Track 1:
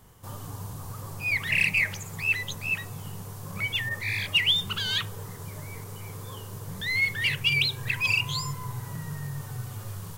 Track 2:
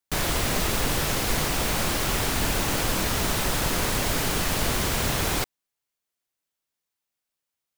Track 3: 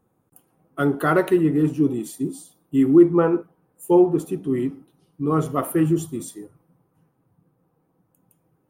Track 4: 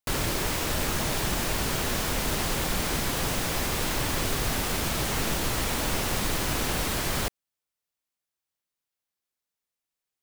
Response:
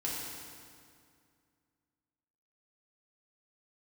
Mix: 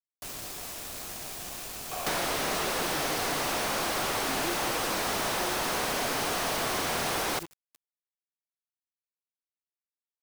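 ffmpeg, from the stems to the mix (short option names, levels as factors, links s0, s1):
-filter_complex "[0:a]acompressor=threshold=0.0141:ratio=2.5,volume=0.237[s0];[1:a]bandreject=f=7200:w=8.1,asplit=2[s1][s2];[s2]highpass=f=720:p=1,volume=70.8,asoftclip=type=tanh:threshold=0.266[s3];[s1][s3]amix=inputs=2:normalize=0,lowpass=f=1200:p=1,volume=0.501,adelay=1800,volume=1.26,asplit=2[s4][s5];[s5]volume=0.596[s6];[2:a]adelay=1500,volume=0.119[s7];[3:a]volume=0.473,asplit=2[s8][s9];[s9]volume=0.447[s10];[s0][s4][s8]amix=inputs=3:normalize=0,asplit=3[s11][s12][s13];[s11]bandpass=f=730:t=q:w=8,volume=1[s14];[s12]bandpass=f=1090:t=q:w=8,volume=0.501[s15];[s13]bandpass=f=2440:t=q:w=8,volume=0.355[s16];[s14][s15][s16]amix=inputs=3:normalize=0,alimiter=level_in=1.68:limit=0.0631:level=0:latency=1,volume=0.596,volume=1[s17];[s6][s10]amix=inputs=2:normalize=0,aecho=0:1:149:1[s18];[s7][s17][s18]amix=inputs=3:normalize=0,bass=f=250:g=-3,treble=f=4000:g=8,acrossover=split=110|1200[s19][s20][s21];[s19]acompressor=threshold=0.00398:ratio=4[s22];[s20]acompressor=threshold=0.0282:ratio=4[s23];[s21]acompressor=threshold=0.0282:ratio=4[s24];[s22][s23][s24]amix=inputs=3:normalize=0,aeval=exprs='val(0)*gte(abs(val(0)),0.0141)':c=same"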